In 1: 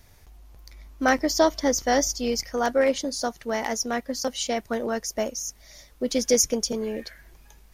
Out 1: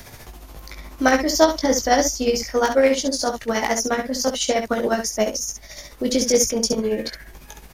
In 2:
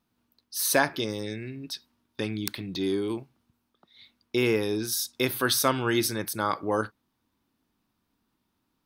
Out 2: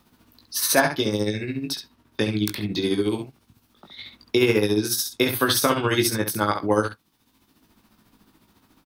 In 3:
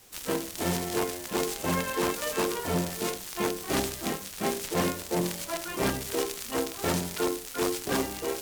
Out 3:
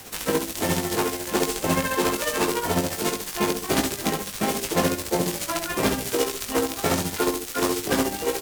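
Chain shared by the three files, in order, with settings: tremolo 14 Hz, depth 65%; early reflections 19 ms -5 dB, 67 ms -7.5 dB; three-band squash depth 40%; gain +6.5 dB

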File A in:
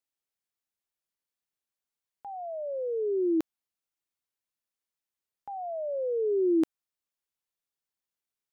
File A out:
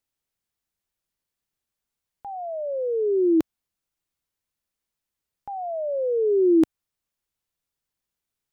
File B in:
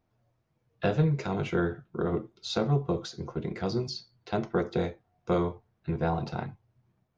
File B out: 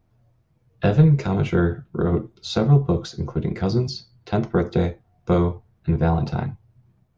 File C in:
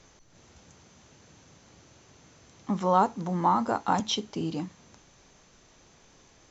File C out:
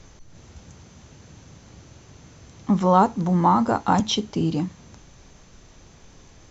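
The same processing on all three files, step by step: low shelf 170 Hz +11.5 dB; gain +4.5 dB

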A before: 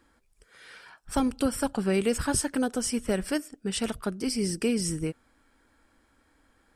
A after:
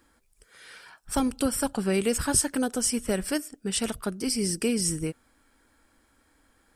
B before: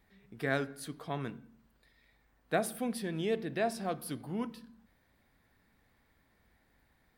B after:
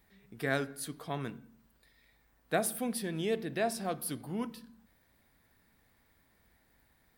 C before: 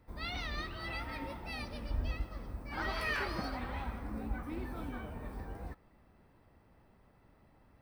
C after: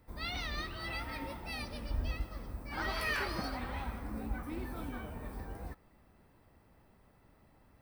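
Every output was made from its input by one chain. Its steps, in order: high shelf 6400 Hz +8.5 dB

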